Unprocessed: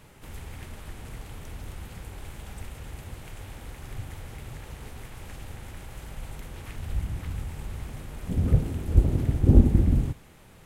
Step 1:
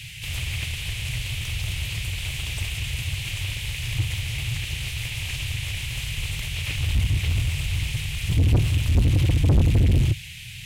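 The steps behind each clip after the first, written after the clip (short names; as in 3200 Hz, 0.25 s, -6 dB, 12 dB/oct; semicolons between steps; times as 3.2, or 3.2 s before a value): elliptic band-stop 120–2600 Hz, stop band 40 dB; overdrive pedal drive 43 dB, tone 1200 Hz, clips at -5.5 dBFS; gain -3.5 dB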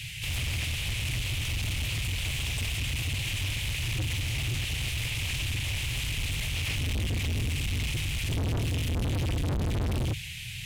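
hard clip -27 dBFS, distortion -5 dB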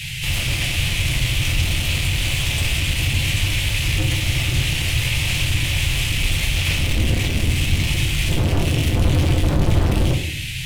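reverb RT60 0.65 s, pre-delay 6 ms, DRR 0.5 dB; gain +8 dB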